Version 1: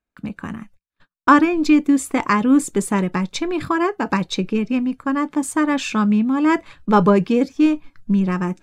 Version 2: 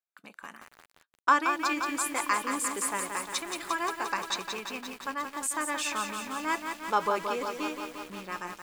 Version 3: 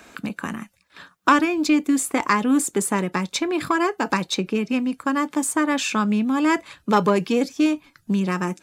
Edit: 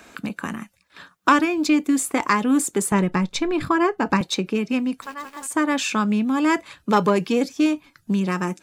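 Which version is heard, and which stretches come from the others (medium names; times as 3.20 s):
3
2.92–4.21 s: from 1
5.02–5.52 s: from 2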